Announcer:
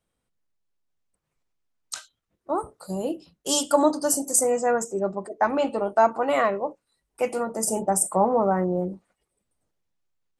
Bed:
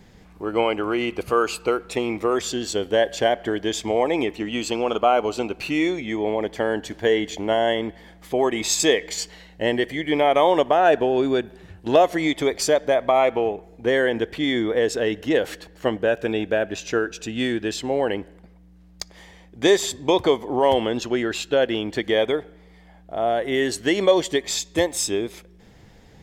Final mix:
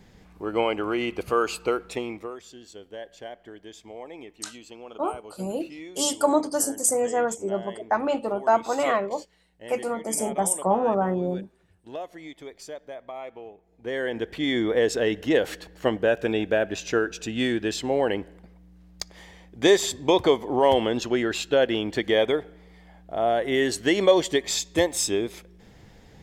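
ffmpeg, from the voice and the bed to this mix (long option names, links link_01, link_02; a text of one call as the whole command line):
ffmpeg -i stem1.wav -i stem2.wav -filter_complex "[0:a]adelay=2500,volume=-1.5dB[link_01];[1:a]volume=15.5dB,afade=type=out:start_time=1.79:duration=0.58:silence=0.149624,afade=type=in:start_time=13.65:duration=1.04:silence=0.11885[link_02];[link_01][link_02]amix=inputs=2:normalize=0" out.wav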